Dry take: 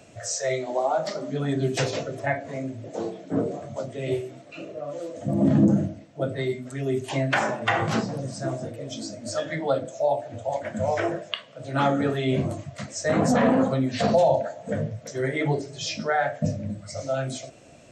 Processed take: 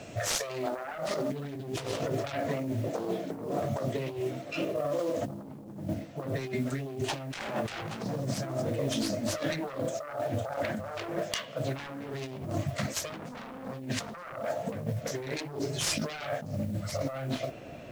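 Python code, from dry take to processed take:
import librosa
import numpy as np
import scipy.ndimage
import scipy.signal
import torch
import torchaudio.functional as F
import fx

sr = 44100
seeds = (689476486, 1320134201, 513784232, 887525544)

y = fx.self_delay(x, sr, depth_ms=0.73)
y = fx.lowpass(y, sr, hz=fx.steps((0.0, 7100.0), (16.97, 3200.0)), slope=12)
y = fx.over_compress(y, sr, threshold_db=-35.0, ratio=-1.0)
y = fx.mod_noise(y, sr, seeds[0], snr_db=27)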